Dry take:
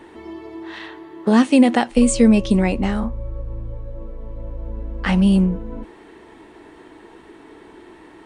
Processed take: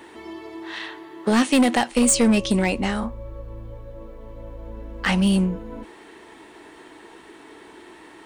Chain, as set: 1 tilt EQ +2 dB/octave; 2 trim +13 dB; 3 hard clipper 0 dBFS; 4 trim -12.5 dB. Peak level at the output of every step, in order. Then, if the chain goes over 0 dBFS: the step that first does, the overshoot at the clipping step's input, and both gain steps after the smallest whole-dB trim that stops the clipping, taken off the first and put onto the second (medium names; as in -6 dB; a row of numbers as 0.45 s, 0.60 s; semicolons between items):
-3.0 dBFS, +10.0 dBFS, 0.0 dBFS, -12.5 dBFS; step 2, 10.0 dB; step 2 +3 dB, step 4 -2.5 dB